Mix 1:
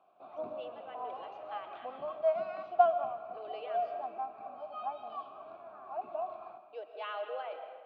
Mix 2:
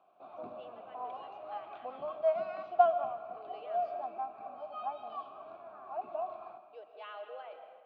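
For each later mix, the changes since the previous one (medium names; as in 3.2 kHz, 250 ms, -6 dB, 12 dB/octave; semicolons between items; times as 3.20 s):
speech -6.5 dB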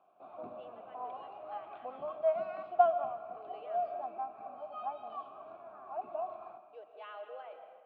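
master: add distance through air 210 m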